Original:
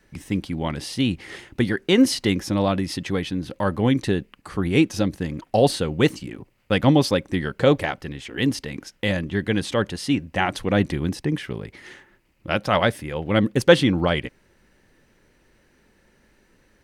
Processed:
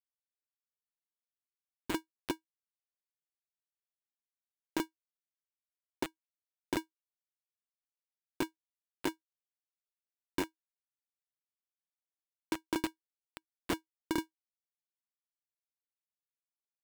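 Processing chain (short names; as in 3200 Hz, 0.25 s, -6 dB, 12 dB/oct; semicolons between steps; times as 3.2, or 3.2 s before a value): ladder high-pass 1800 Hz, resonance 35%; Schmitt trigger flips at -19.5 dBFS; polarity switched at an audio rate 320 Hz; gain +9.5 dB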